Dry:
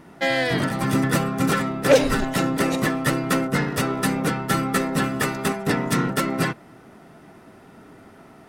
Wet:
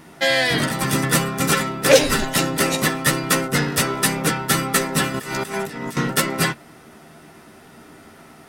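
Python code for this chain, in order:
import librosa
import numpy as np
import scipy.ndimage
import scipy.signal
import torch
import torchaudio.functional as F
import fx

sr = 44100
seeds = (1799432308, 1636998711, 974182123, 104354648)

y = fx.high_shelf(x, sr, hz=2200.0, db=10.0)
y = fx.doubler(y, sr, ms=13.0, db=-7.5)
y = fx.over_compress(y, sr, threshold_db=-29.0, ratio=-1.0, at=(5.14, 5.97))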